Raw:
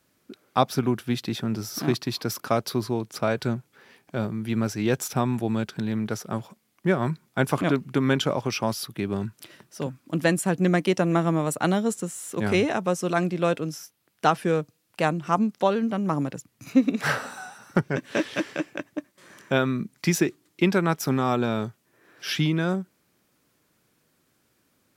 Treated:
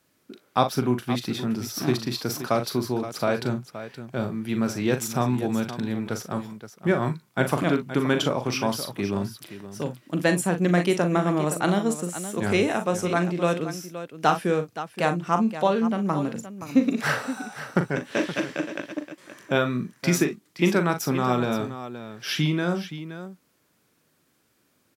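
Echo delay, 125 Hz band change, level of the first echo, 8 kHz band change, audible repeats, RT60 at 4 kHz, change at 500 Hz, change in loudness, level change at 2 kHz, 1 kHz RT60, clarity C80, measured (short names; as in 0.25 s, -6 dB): 40 ms, -0.5 dB, -8.5 dB, +1.0 dB, 2, none, +0.5 dB, +0.5 dB, +1.0 dB, none, none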